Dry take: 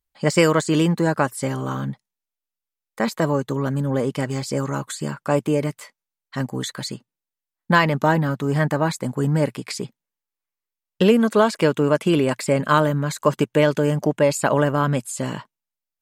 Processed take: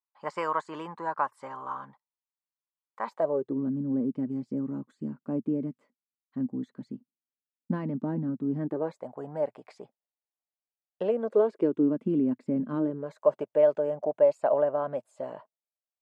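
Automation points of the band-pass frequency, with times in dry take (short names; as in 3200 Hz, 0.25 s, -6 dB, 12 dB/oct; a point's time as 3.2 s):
band-pass, Q 4.2
3.06 s 1000 Hz
3.6 s 250 Hz
8.56 s 250 Hz
9.03 s 680 Hz
11.03 s 680 Hz
11.99 s 250 Hz
12.72 s 250 Hz
13.18 s 630 Hz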